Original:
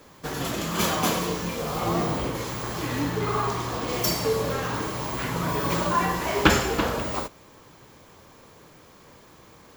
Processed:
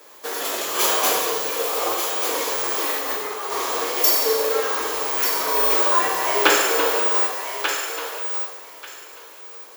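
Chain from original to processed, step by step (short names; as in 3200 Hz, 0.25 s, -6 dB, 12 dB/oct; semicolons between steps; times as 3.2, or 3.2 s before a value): high shelf 9100 Hz +9 dB; 1.94–3.98 negative-ratio compressor -28 dBFS, ratio -0.5; Chebyshev high-pass 410 Hz, order 3; thinning echo 1.188 s, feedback 19%, high-pass 790 Hz, level -6 dB; plate-style reverb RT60 1.4 s, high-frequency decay 0.9×, DRR 2 dB; gain +2.5 dB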